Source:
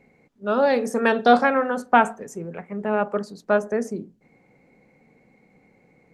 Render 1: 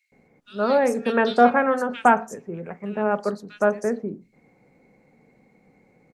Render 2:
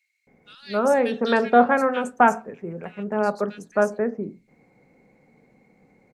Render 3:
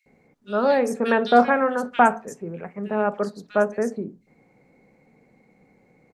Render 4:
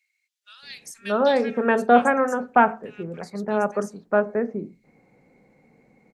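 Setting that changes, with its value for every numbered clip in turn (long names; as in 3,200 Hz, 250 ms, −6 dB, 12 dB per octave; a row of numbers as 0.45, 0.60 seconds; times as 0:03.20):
multiband delay without the direct sound, delay time: 120, 270, 60, 630 milliseconds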